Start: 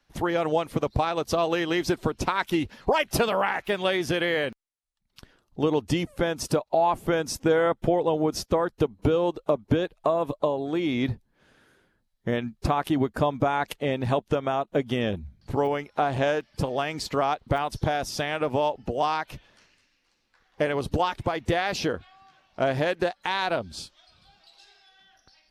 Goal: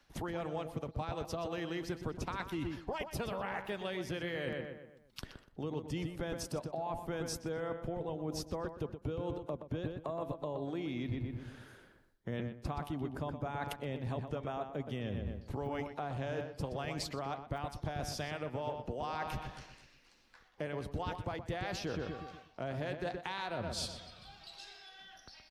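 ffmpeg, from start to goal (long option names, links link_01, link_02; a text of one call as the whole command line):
ffmpeg -i in.wav -filter_complex "[0:a]acrossover=split=170[link_01][link_02];[link_02]acompressor=threshold=-33dB:ratio=3[link_03];[link_01][link_03]amix=inputs=2:normalize=0,asplit=2[link_04][link_05];[link_05]adelay=123,lowpass=frequency=2800:poles=1,volume=-8dB,asplit=2[link_06][link_07];[link_07]adelay=123,lowpass=frequency=2800:poles=1,volume=0.46,asplit=2[link_08][link_09];[link_09]adelay=123,lowpass=frequency=2800:poles=1,volume=0.46,asplit=2[link_10][link_11];[link_11]adelay=123,lowpass=frequency=2800:poles=1,volume=0.46,asplit=2[link_12][link_13];[link_13]adelay=123,lowpass=frequency=2800:poles=1,volume=0.46[link_14];[link_04][link_06][link_08][link_10][link_12][link_14]amix=inputs=6:normalize=0,areverse,acompressor=threshold=-38dB:ratio=12,areverse,volume=3.5dB" out.wav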